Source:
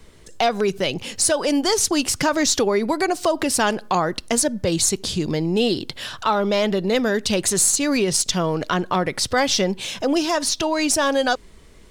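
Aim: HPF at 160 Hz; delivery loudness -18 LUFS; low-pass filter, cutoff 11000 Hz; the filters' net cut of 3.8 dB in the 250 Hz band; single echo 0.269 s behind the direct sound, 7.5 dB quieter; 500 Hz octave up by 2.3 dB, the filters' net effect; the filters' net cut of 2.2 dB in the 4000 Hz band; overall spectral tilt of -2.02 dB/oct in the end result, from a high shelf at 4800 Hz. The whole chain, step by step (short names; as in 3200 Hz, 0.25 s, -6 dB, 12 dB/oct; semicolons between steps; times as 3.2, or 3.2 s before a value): HPF 160 Hz; LPF 11000 Hz; bell 250 Hz -6 dB; bell 500 Hz +4.5 dB; bell 4000 Hz -7 dB; high shelf 4800 Hz +7 dB; echo 0.269 s -7.5 dB; gain +1 dB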